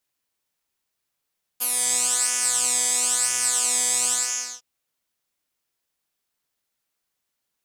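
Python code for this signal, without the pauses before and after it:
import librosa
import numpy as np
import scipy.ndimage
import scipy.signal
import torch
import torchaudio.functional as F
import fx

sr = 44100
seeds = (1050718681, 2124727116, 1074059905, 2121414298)

y = fx.sub_patch_pwm(sr, seeds[0], note=59, wave2='saw', interval_st=-12, detune_cents=20, level2_db=-7.0, sub_db=-15.0, noise_db=-30.0, kind='bandpass', cutoff_hz=6100.0, q=5.9, env_oct=1.0, env_decay_s=0.27, env_sustain_pct=40, attack_ms=19.0, decay_s=0.06, sustain_db=-2, release_s=0.52, note_s=2.49, lfo_hz=1.0, width_pct=12, width_swing_pct=6)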